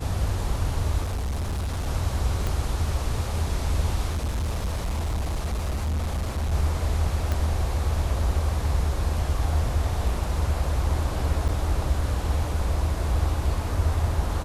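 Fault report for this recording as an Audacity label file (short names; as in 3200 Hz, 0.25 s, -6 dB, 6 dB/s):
1.040000	1.880000	clipped -24.5 dBFS
2.470000	2.470000	pop -14 dBFS
4.090000	6.530000	clipped -23 dBFS
7.320000	7.320000	pop -13 dBFS
11.480000	11.490000	gap 6.9 ms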